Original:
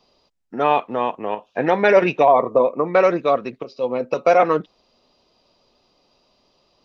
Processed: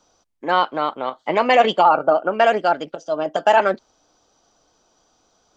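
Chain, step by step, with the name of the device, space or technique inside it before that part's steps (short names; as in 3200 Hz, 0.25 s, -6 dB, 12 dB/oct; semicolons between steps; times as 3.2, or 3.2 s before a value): nightcore (varispeed +23%)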